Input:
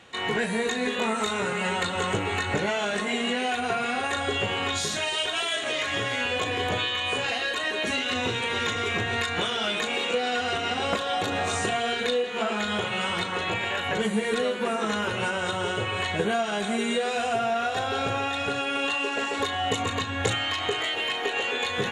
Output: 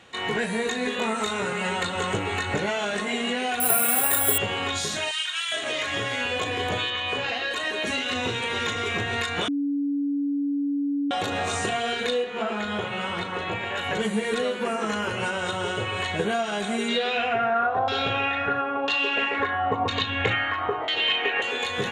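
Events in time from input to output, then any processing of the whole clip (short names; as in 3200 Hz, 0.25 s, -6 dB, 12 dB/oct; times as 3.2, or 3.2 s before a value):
3.6–4.38 careless resampling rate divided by 4×, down filtered, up zero stuff
5.11–5.52 HPF 1300 Hz 24 dB/oct
6.9–7.51 LPF 4800 Hz
9.48–11.11 bleep 284 Hz -22.5 dBFS
12.24–13.76 high shelf 3800 Hz -10.5 dB
14.63–15.26 notch 3700 Hz, Q 6.7
16.88–21.42 LFO low-pass saw down 1 Hz 830–4900 Hz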